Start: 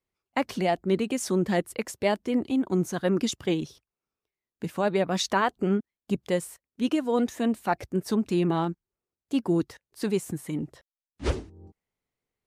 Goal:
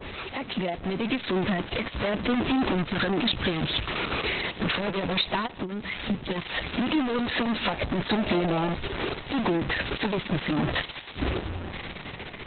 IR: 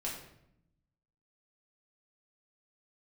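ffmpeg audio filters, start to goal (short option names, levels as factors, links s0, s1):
-filter_complex "[0:a]aeval=exprs='val(0)+0.5*0.0299*sgn(val(0))':c=same,adynamicequalizer=threshold=0.00708:dfrequency=2700:dqfactor=0.83:tfrequency=2700:tqfactor=0.83:attack=5:release=100:ratio=0.375:range=3:mode=boostabove:tftype=bell,asettb=1/sr,asplit=3[s0][s1][s2];[s0]atrim=end=5.464[s3];[s1]atrim=start=5.46:end=6.36,asetpts=PTS-STARTPTS,afade=t=in:d=0.004:c=qsin,afade=t=out:st=0.896:d=0.004:c=qsin,acompressor=threshold=0.0224:ratio=12[s4];[s2]atrim=start=6.356[s5];[s3][s4]acrossfade=d=0.004:c1=hsin:c2=qsin[s6];[s6][s5]acrossfade=d=0.004:c1=qsin:c2=hsin,alimiter=limit=0.112:level=0:latency=1:release=307,dynaudnorm=f=120:g=21:m=3.16,asoftclip=type=tanh:threshold=0.075,asettb=1/sr,asplit=3[s7][s8][s9];[s7]atrim=end=8.184[s10];[s8]atrim=start=8.18:end=8.7,asetpts=PTS-STARTPTS,afade=t=in:d=0.004:c=qsin,afade=t=out:st=0.516:d=0.004:c=qsin,aeval=exprs='val(0)+0.02*sin(2*PI*620*n/s)':c=same[s11];[s9]atrim=start=8.696[s12];[s10][s11]acrossfade=d=0.004:c1=hsin:c2=qsin[s13];[s13][s12]acrossfade=d=0.004:c1=qsin:c2=hsin,asplit=2[s14][s15];[1:a]atrim=start_sample=2205,afade=t=out:st=0.16:d=0.01,atrim=end_sample=7497,adelay=140[s16];[s15][s16]afir=irnorm=-1:irlink=0,volume=0.075[s17];[s14][s17]amix=inputs=2:normalize=0,volume=1.19" -ar 48000 -c:a libopus -b:a 6k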